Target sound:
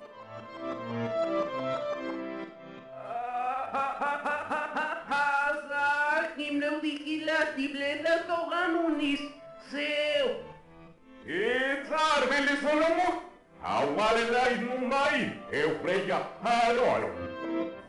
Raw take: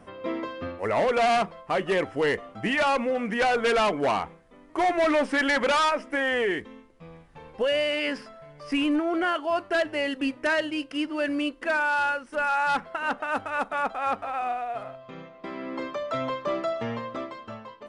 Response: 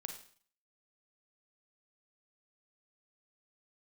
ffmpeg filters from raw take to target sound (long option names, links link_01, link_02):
-filter_complex "[0:a]areverse,bandreject=frequency=73.46:width_type=h:width=4,bandreject=frequency=146.92:width_type=h:width=4,bandreject=frequency=220.38:width_type=h:width=4,bandreject=frequency=293.84:width_type=h:width=4,bandreject=frequency=367.3:width_type=h:width=4,bandreject=frequency=440.76:width_type=h:width=4,bandreject=frequency=514.22:width_type=h:width=4[link_01];[1:a]atrim=start_sample=2205[link_02];[link_01][link_02]afir=irnorm=-1:irlink=0"